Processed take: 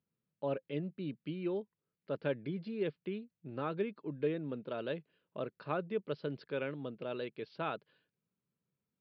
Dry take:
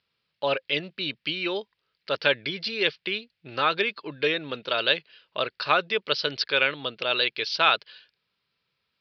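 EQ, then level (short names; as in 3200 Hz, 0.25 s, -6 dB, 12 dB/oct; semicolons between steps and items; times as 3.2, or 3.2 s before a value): band-pass 190 Hz, Q 1.3; air absorption 93 m; +1.5 dB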